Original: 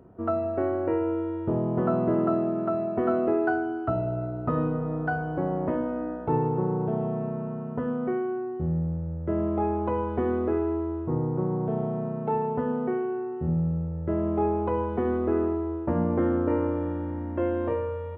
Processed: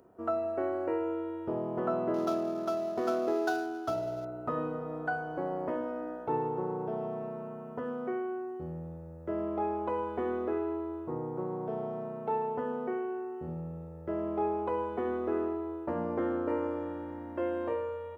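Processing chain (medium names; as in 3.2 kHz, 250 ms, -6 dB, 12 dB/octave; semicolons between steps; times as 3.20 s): 2.14–4.25 s: median filter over 15 samples; tone controls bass -13 dB, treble +10 dB; trim -3.5 dB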